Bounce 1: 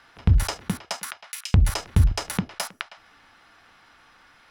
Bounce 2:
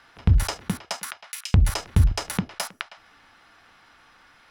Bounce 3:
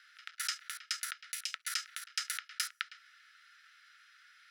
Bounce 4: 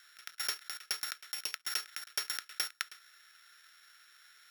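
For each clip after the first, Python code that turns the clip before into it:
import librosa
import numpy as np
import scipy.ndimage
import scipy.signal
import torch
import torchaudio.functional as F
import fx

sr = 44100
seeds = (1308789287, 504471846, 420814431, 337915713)

y1 = x
y2 = scipy.signal.sosfilt(scipy.signal.cheby1(6, 3, 1300.0, 'highpass', fs=sr, output='sos'), y1)
y2 = y2 * 10.0 ** (-3.0 / 20.0)
y3 = np.r_[np.sort(y2[:len(y2) // 8 * 8].reshape(-1, 8), axis=1).ravel(), y2[len(y2) // 8 * 8:]]
y3 = y3 * 10.0 ** (1.0 / 20.0)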